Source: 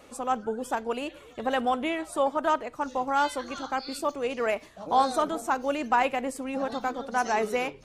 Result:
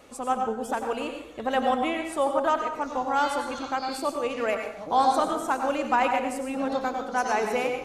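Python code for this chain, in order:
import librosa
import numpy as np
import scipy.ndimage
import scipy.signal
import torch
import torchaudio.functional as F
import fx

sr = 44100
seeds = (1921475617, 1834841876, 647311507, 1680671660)

y = fx.rev_plate(x, sr, seeds[0], rt60_s=0.67, hf_ratio=0.75, predelay_ms=80, drr_db=4.5)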